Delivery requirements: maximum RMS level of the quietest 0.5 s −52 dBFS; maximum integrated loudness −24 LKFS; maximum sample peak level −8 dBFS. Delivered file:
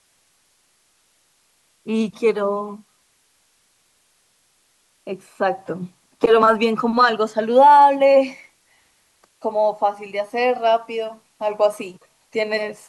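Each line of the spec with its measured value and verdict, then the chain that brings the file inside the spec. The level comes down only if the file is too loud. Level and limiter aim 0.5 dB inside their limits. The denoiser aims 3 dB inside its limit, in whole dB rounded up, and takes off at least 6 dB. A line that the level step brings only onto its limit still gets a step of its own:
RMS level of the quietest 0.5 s −63 dBFS: in spec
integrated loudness −18.5 LKFS: out of spec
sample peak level −3.5 dBFS: out of spec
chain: level −6 dB

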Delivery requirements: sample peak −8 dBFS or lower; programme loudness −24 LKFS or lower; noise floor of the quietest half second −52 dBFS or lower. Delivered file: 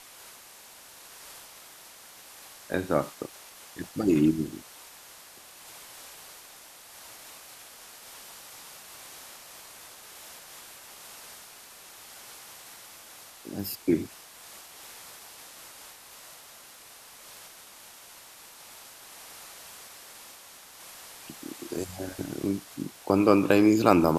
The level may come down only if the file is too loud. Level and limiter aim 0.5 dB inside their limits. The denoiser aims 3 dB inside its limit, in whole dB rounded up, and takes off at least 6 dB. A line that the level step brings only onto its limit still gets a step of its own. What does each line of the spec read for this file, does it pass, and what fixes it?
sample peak −3.0 dBFS: out of spec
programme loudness −27.0 LKFS: in spec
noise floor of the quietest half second −50 dBFS: out of spec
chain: broadband denoise 6 dB, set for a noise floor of −50 dBFS
brickwall limiter −8.5 dBFS

